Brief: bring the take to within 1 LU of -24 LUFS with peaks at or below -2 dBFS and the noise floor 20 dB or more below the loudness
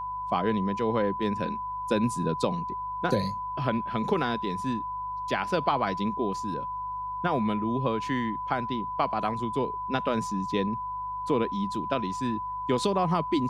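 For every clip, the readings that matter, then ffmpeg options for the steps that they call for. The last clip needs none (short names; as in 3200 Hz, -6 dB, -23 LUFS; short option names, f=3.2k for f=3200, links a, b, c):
hum 50 Hz; harmonics up to 150 Hz; hum level -48 dBFS; steady tone 1000 Hz; tone level -31 dBFS; loudness -29.0 LUFS; peak -10.5 dBFS; loudness target -24.0 LUFS
-> -af "bandreject=f=50:t=h:w=4,bandreject=f=100:t=h:w=4,bandreject=f=150:t=h:w=4"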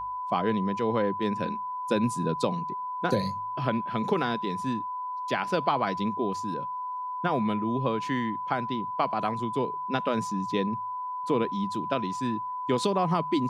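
hum none; steady tone 1000 Hz; tone level -31 dBFS
-> -af "bandreject=f=1k:w=30"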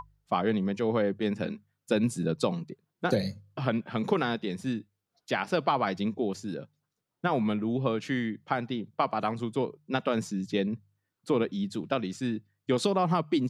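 steady tone none; loudness -30.0 LUFS; peak -11.5 dBFS; loudness target -24.0 LUFS
-> -af "volume=6dB"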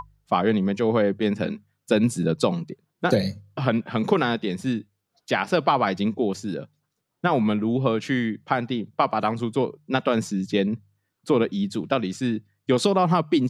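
loudness -24.0 LUFS; peak -5.5 dBFS; noise floor -78 dBFS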